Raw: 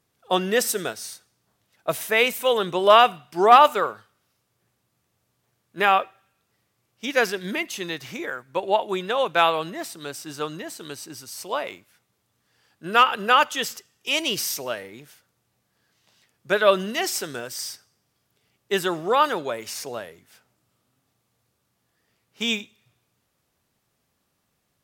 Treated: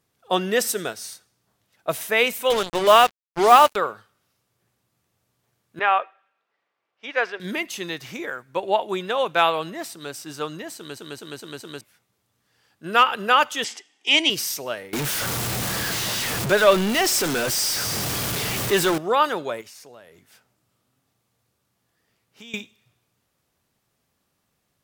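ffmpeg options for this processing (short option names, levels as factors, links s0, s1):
-filter_complex "[0:a]asettb=1/sr,asplit=3[s0][s1][s2];[s0]atrim=end=2.504[s3];[s1]atrim=start=2.5:end=3.76,asetpts=PTS-STARTPTS,afade=t=in:d=0.004:c=qsin,afade=t=out:st=1.256:d=0.004:c=qsin,acrusher=bits=3:mix=0:aa=0.5[s4];[s2]atrim=start=3.756[s5];[s3][s4]acrossfade=d=0.004:c1=hsin:c2=qsin[s6];[s6][s5]acrossfade=d=0.004:c1=qsin:c2=hsin,asettb=1/sr,asplit=3[s7][s8][s9];[s7]atrim=end=5.794[s10];[s8]atrim=start=5.79:end=7.4,asetpts=PTS-STARTPTS,afade=t=in:d=0.004:c=qsin,afade=t=out:st=1.606:d=0.004:c=qsin,highpass=550,lowpass=2500[s11];[s9]atrim=start=7.396[s12];[s10][s11]acrossfade=d=0.004:c1=hsin:c2=qsin[s13];[s13][s12]acrossfade=d=0.004:c1=qsin:c2=hsin,asettb=1/sr,asplit=3[s14][s15][s16];[s14]atrim=end=13.644[s17];[s15]atrim=start=13.64:end=14.3,asetpts=PTS-STARTPTS,afade=t=in:d=0.004:c=qsin,afade=t=out:st=0.656:d=0.004:c=qsin,highpass=f=250:w=0.5412,highpass=f=250:w=1.3066,equalizer=f=290:t=q:w=4:g=8,equalizer=f=530:t=q:w=4:g=-5,equalizer=f=800:t=q:w=4:g=9,equalizer=f=1300:t=q:w=4:g=-5,equalizer=f=2100:t=q:w=4:g=10,equalizer=f=3200:t=q:w=4:g=8,lowpass=f=8900:w=0.5412,lowpass=f=8900:w=1.3066[s18];[s16]atrim=start=14.296[s19];[s17][s18]acrossfade=d=0.004:c1=hsin:c2=qsin[s20];[s20][s19]acrossfade=d=0.004:c1=qsin:c2=hsin,asettb=1/sr,asplit=3[s21][s22][s23];[s21]atrim=end=14.934[s24];[s22]atrim=start=14.93:end=18.98,asetpts=PTS-STARTPTS,afade=t=in:d=0.004:c=qsin,afade=t=out:st=4.046:d=0.004:c=qsin,aeval=exprs='val(0)+0.5*0.1*sgn(val(0))':c=same[s25];[s23]atrim=start=18.976[s26];[s24][s25]acrossfade=d=0.004:c1=hsin:c2=qsin[s27];[s27][s26]acrossfade=d=0.004:c1=qsin:c2=hsin,asettb=1/sr,asplit=3[s28][s29][s30];[s28]atrim=end=19.614[s31];[s29]atrim=start=19.61:end=22.54,asetpts=PTS-STARTPTS,afade=t=in:d=0.004:c=qsin,afade=t=out:st=2.926:d=0.004:c=qsin,acompressor=threshold=0.00501:ratio=3:attack=3.2:release=140:knee=1:detection=peak[s32];[s30]atrim=start=22.536[s33];[s31][s32]acrossfade=d=0.004:c1=hsin:c2=qsin[s34];[s34][s33]acrossfade=d=0.004:c1=qsin:c2=hsin,asplit=6[s35][s36][s37][s38][s39][s40];[s35]atrim=end=10.972[s41];[s36]atrim=start=10.758:end=10.972[s42];[s37]atrim=start=10.758:end=10.972[s43];[s38]atrim=start=10.758:end=10.972[s44];[s39]atrim=start=10.758:end=10.972[s45];[s40]atrim=start=11.808[s46];[s41][s42]acrossfade=d=0.004:c1=hsin:c2=hsin[s47];[s47][s43]acrossfade=d=0.004:c1=hsin:c2=hsin[s48];[s48][s44]acrossfade=d=0.004:c1=hsin:c2=hsin[s49];[s49][s45]acrossfade=d=0.004:c1=hsin:c2=hsin[s50];[s50][s46]acrossfade=d=0.004:c1=hsin:c2=hsin"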